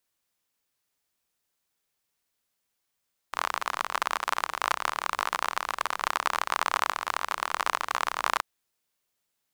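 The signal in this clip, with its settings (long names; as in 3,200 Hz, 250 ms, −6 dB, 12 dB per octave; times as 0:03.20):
rain-like ticks over hiss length 5.08 s, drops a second 42, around 1,100 Hz, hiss −27.5 dB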